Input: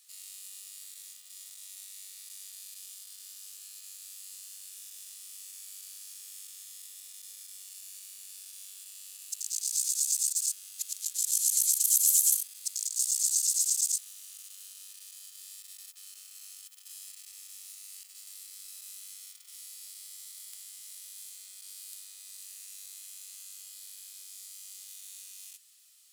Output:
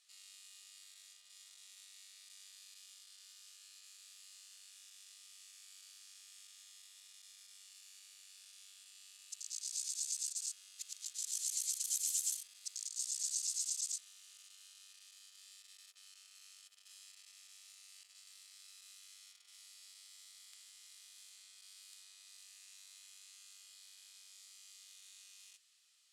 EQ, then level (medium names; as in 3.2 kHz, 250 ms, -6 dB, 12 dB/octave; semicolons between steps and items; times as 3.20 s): high-pass 480 Hz 12 dB/octave; distance through air 53 m; treble shelf 8.2 kHz -7 dB; -3.0 dB